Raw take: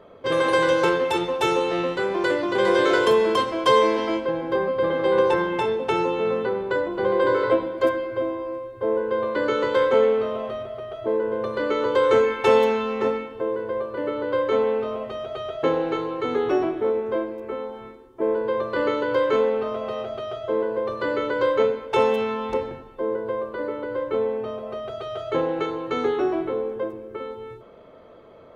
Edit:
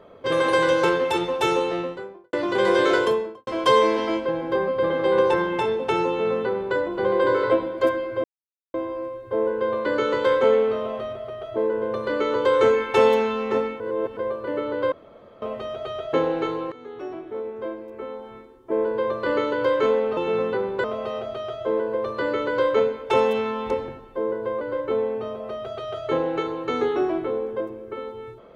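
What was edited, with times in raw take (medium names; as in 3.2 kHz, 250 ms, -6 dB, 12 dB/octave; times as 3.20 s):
1.53–2.33 s: studio fade out
2.90–3.47 s: studio fade out
6.09–6.76 s: copy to 19.67 s
8.24 s: insert silence 0.50 s
13.30–13.67 s: reverse
14.42–14.92 s: room tone
16.22–18.36 s: fade in, from -20 dB
23.44–23.84 s: delete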